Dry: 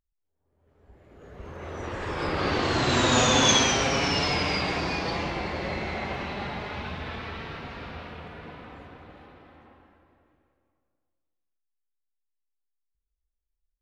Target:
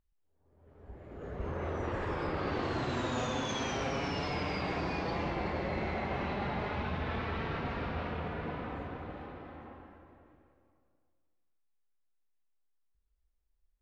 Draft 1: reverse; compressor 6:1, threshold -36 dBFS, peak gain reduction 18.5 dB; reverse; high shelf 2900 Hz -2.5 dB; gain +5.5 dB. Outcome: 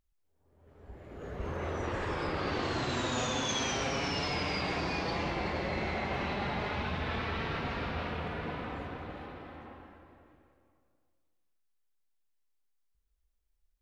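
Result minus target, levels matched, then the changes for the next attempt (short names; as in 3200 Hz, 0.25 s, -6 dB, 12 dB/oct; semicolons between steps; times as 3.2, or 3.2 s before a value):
8000 Hz band +6.5 dB
change: high shelf 2900 Hz -12.5 dB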